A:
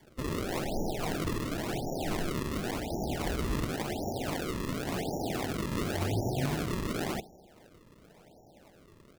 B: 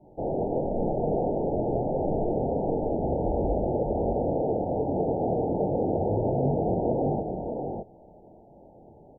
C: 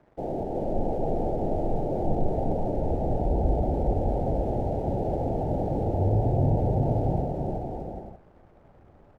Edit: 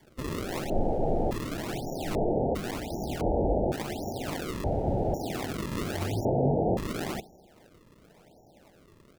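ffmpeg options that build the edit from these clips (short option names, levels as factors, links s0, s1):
-filter_complex "[2:a]asplit=2[s0][s1];[1:a]asplit=3[s2][s3][s4];[0:a]asplit=6[s5][s6][s7][s8][s9][s10];[s5]atrim=end=0.702[s11];[s0]atrim=start=0.698:end=1.312[s12];[s6]atrim=start=1.308:end=2.152[s13];[s2]atrim=start=2.148:end=2.552[s14];[s7]atrim=start=2.548:end=3.212[s15];[s3]atrim=start=3.208:end=3.722[s16];[s8]atrim=start=3.718:end=4.642[s17];[s1]atrim=start=4.638:end=5.142[s18];[s9]atrim=start=5.138:end=6.252[s19];[s4]atrim=start=6.248:end=6.772[s20];[s10]atrim=start=6.768[s21];[s11][s12]acrossfade=d=0.004:c1=hsin:c2=hsin[s22];[s22][s13]acrossfade=d=0.004:c1=hsin:c2=hsin[s23];[s23][s14]acrossfade=d=0.004:c1=hsin:c2=hsin[s24];[s24][s15]acrossfade=d=0.004:c1=hsin:c2=hsin[s25];[s25][s16]acrossfade=d=0.004:c1=hsin:c2=hsin[s26];[s26][s17]acrossfade=d=0.004:c1=hsin:c2=hsin[s27];[s27][s18]acrossfade=d=0.004:c1=hsin:c2=hsin[s28];[s28][s19]acrossfade=d=0.004:c1=hsin:c2=hsin[s29];[s29][s20]acrossfade=d=0.004:c1=hsin:c2=hsin[s30];[s30][s21]acrossfade=d=0.004:c1=hsin:c2=hsin"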